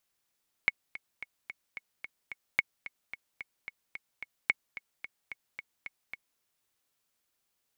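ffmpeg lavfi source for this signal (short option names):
-f lavfi -i "aevalsrc='pow(10,(-10.5-16*gte(mod(t,7*60/220),60/220))/20)*sin(2*PI*2200*mod(t,60/220))*exp(-6.91*mod(t,60/220)/0.03)':d=5.72:s=44100"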